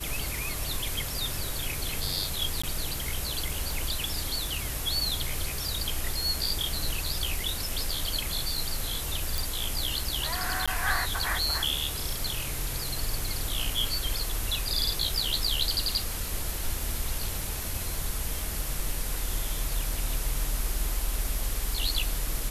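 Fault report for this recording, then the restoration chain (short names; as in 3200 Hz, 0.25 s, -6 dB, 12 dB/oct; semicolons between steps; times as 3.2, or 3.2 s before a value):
crackle 50/s -36 dBFS
2.62–2.63 gap 15 ms
9.38 pop
10.66–10.68 gap 16 ms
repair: de-click; interpolate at 2.62, 15 ms; interpolate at 10.66, 16 ms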